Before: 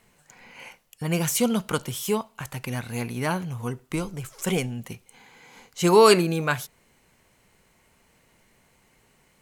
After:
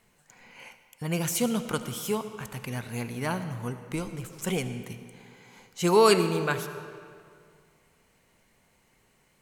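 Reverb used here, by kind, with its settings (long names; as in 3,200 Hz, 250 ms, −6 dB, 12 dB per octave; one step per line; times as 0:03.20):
comb and all-pass reverb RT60 2.2 s, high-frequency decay 0.75×, pre-delay 35 ms, DRR 10 dB
level −4 dB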